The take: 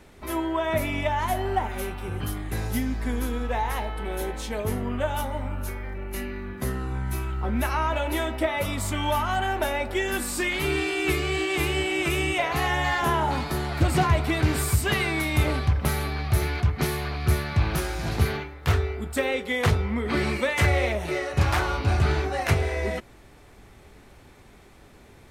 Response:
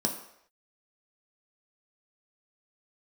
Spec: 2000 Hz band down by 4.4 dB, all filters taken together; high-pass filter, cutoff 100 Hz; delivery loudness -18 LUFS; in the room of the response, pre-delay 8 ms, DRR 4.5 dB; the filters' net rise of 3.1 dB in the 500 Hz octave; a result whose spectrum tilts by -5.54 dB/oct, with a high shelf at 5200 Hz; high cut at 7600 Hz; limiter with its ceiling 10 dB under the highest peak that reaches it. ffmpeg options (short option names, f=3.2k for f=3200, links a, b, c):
-filter_complex "[0:a]highpass=100,lowpass=7.6k,equalizer=f=500:t=o:g=4.5,equalizer=f=2k:t=o:g=-6.5,highshelf=f=5.2k:g=6,alimiter=limit=-18dB:level=0:latency=1,asplit=2[a][b];[1:a]atrim=start_sample=2205,adelay=8[c];[b][c]afir=irnorm=-1:irlink=0,volume=-11dB[d];[a][d]amix=inputs=2:normalize=0,volume=7dB"